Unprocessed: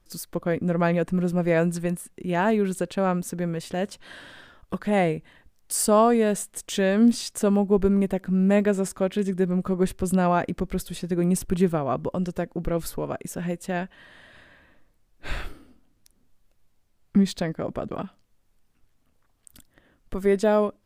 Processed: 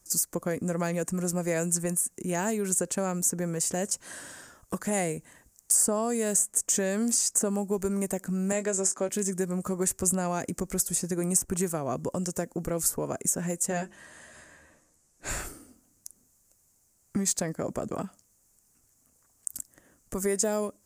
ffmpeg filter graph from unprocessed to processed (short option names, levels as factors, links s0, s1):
-filter_complex "[0:a]asettb=1/sr,asplit=3[s0][s1][s2];[s0]atrim=end=8.524[s3];[s1]atrim=start=8.52:end=9.09,asetpts=PTS-STARTPTS,afade=t=in:d=0.004:c=qsin,afade=t=out:st=0.566:d=0.004:c=qsin,highpass=260,lowpass=7400,asplit=2[s4][s5];[s5]adelay=21,volume=0.251[s6];[s4][s6]amix=inputs=2:normalize=0,atrim=end_sample=25137[s7];[s2]atrim=start=9.086[s8];[s3][s7]acrossfade=d=0.004:c1=hsin:c2=qsin[s9];[s9][s8]acrossfade=d=0.004:c1=qsin:c2=hsin,asettb=1/sr,asplit=3[s10][s11][s12];[s10]atrim=end=13.694[s13];[s11]atrim=start=13.69:end=15.29,asetpts=PTS-STARTPTS,afade=t=in:d=0.004:c=qsin,afade=t=out:st=1.596:d=0.004:c=qsin,lowpass=10000,bandreject=f=50:t=h:w=6,bandreject=f=100:t=h:w=6,bandreject=f=150:t=h:w=6,bandreject=f=200:t=h:w=6,bandreject=f=250:t=h:w=6,bandreject=f=300:t=h:w=6,bandreject=f=350:t=h:w=6,asplit=2[s14][s15];[s15]adelay=13,volume=0.473[s16];[s14][s16]amix=inputs=2:normalize=0,atrim=end_sample=70560[s17];[s12]atrim=start=15.286[s18];[s13][s17]acrossfade=d=0.004:c1=hsin:c2=qsin[s19];[s19][s18]acrossfade=d=0.004:c1=qsin:c2=hsin,highpass=f=80:p=1,highshelf=f=5000:t=q:w=3:g=12.5,acrossover=split=550|2200[s20][s21][s22];[s20]acompressor=threshold=0.0355:ratio=4[s23];[s21]acompressor=threshold=0.02:ratio=4[s24];[s22]acompressor=threshold=0.0631:ratio=4[s25];[s23][s24][s25]amix=inputs=3:normalize=0"